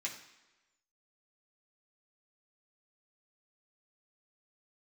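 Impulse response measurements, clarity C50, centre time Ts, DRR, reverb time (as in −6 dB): 8.5 dB, 23 ms, −4.0 dB, 1.1 s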